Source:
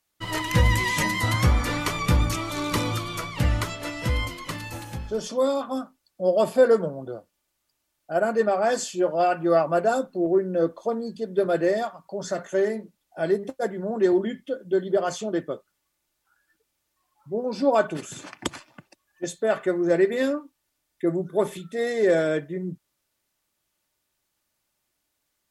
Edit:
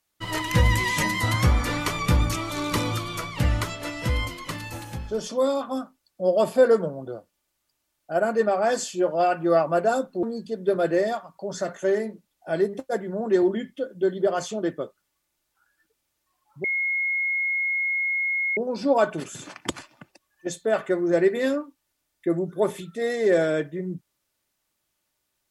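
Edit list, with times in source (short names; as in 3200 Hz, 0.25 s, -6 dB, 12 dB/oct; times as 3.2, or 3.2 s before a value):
10.23–10.93 cut
17.34 add tone 2160 Hz -22 dBFS 1.93 s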